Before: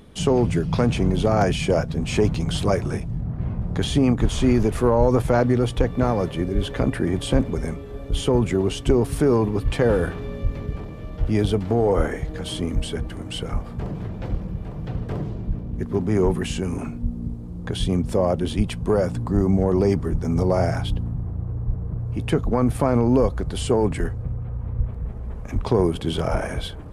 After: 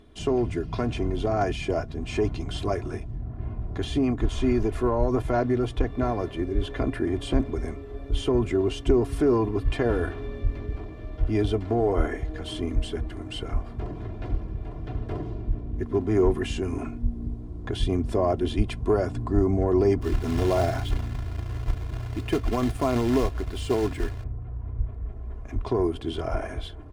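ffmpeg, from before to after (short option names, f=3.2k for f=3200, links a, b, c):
-filter_complex "[0:a]asettb=1/sr,asplit=3[a][b][c];[a]atrim=end=20.014[d];[b]atrim=start=20.01:end=24.24,asetpts=PTS-STARTPTS,afade=t=in:d=0.004:c=qsin,afade=t=out:st=4.226:d=0.004:c=qsin,acrusher=bits=3:mode=log:mix=0:aa=0.000001[e];[c]atrim=start=24.236[f];[d][e]acrossfade=d=0.004:c1=hsin:c2=qsin[g];[g][f]acrossfade=d=0.004:c1=qsin:c2=hsin,highshelf=f=6.9k:g=-11,aecho=1:1:2.9:0.67,dynaudnorm=f=750:g=17:m=11.5dB,volume=-7dB"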